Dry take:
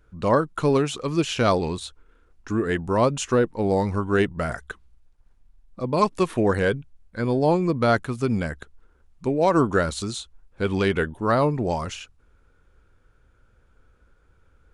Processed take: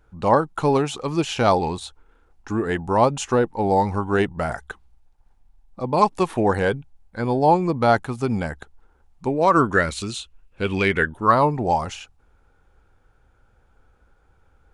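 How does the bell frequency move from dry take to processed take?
bell +12 dB 0.37 oct
9.27 s 820 Hz
10.04 s 2700 Hz
10.73 s 2700 Hz
11.5 s 800 Hz

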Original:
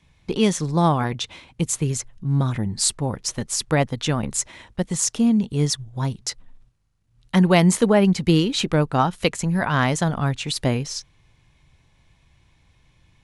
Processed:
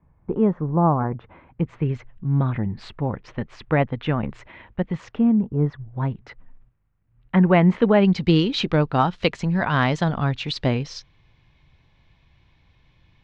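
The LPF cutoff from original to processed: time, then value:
LPF 24 dB/oct
1.13 s 1300 Hz
1.97 s 2600 Hz
5.08 s 2600 Hz
5.57 s 1200 Hz
5.82 s 2300 Hz
7.67 s 2300 Hz
8.14 s 4600 Hz

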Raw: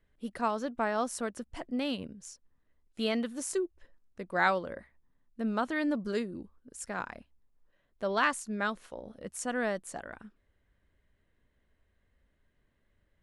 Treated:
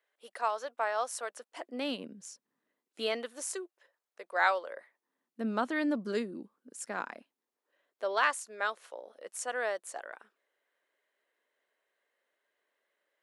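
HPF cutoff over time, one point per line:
HPF 24 dB/oct
1.37 s 520 Hz
2.28 s 160 Hz
3.57 s 490 Hz
4.73 s 490 Hz
5.45 s 200 Hz
6.78 s 200 Hz
8.26 s 440 Hz

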